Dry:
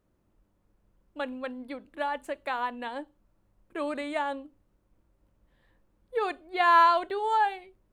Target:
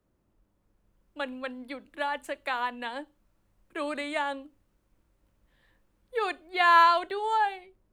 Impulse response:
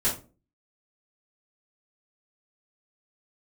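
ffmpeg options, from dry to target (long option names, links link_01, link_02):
-filter_complex "[0:a]acrossover=split=130|350|1400[link_01][link_02][link_03][link_04];[link_04]dynaudnorm=framelen=180:gausssize=11:maxgain=6dB[link_05];[link_01][link_02][link_03][link_05]amix=inputs=4:normalize=0,volume=-1.5dB"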